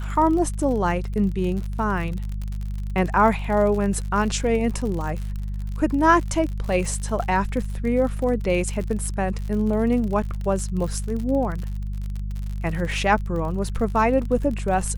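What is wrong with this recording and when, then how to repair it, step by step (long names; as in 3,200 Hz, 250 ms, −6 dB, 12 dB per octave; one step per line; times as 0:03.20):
surface crackle 52 per second −29 dBFS
mains hum 50 Hz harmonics 4 −28 dBFS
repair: click removal
hum removal 50 Hz, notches 4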